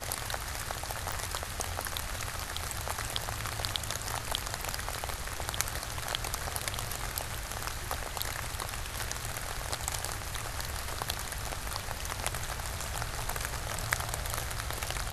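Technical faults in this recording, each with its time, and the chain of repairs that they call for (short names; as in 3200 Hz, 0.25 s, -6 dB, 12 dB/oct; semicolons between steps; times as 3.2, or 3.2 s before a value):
1.12 pop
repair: de-click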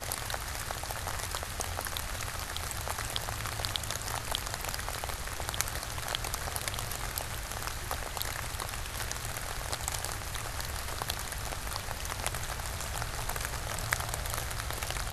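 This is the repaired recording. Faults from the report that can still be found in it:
none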